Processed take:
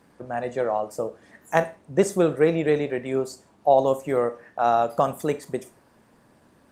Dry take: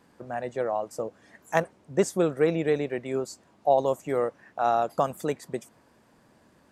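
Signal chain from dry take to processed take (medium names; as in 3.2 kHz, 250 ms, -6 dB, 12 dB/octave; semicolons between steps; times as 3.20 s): Schroeder reverb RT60 0.34 s, combs from 26 ms, DRR 12 dB; trim +3.5 dB; Opus 32 kbps 48 kHz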